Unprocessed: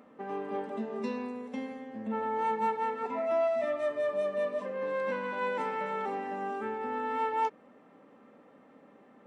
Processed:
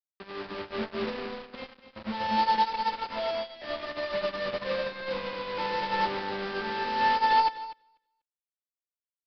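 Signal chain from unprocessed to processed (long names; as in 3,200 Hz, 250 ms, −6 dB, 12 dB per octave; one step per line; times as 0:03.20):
parametric band 150 Hz −5 dB 0.82 octaves
comb filter 5.7 ms, depth 77%
brickwall limiter −28.5 dBFS, peak gain reduction 11 dB
bit reduction 6 bits
repeating echo 244 ms, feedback 22%, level −4.5 dB
on a send at −23.5 dB: convolution reverb, pre-delay 3 ms
on the sum: downsampling to 11,025 Hz
expander for the loud parts 2.5 to 1, over −44 dBFS
level +8.5 dB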